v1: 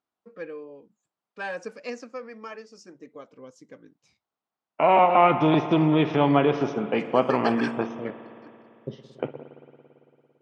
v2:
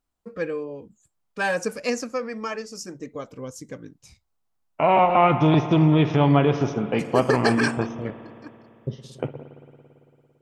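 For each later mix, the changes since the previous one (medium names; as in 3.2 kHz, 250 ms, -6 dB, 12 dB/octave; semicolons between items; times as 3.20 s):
first voice +8.5 dB; master: remove band-pass 220–4400 Hz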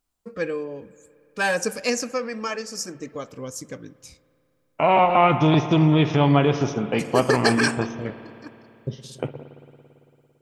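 first voice: send on; master: add treble shelf 3.3 kHz +7.5 dB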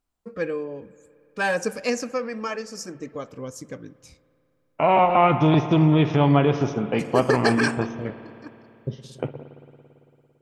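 master: add treble shelf 3.3 kHz -7.5 dB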